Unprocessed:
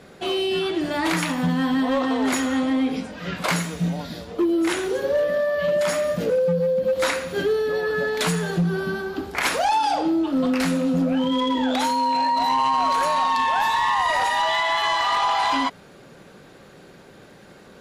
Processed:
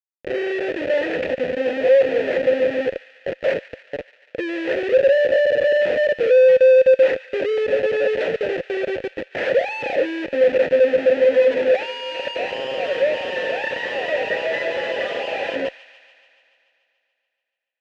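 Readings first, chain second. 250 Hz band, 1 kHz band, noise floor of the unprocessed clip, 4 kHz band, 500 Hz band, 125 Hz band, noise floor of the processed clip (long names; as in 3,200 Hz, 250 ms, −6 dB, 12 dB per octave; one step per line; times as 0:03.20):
−8.5 dB, −12.0 dB, −47 dBFS, −4.5 dB, +8.0 dB, below −10 dB, −75 dBFS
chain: reverb reduction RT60 1.2 s
high-pass filter 360 Hz 24 dB per octave
spectral tilt −2.5 dB per octave
automatic gain control gain up to 14 dB
comparator with hysteresis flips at −16.5 dBFS
formant filter e
high-frequency loss of the air 110 metres
delay with a high-pass on its return 144 ms, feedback 70%, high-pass 1,500 Hz, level −14.5 dB
level +5.5 dB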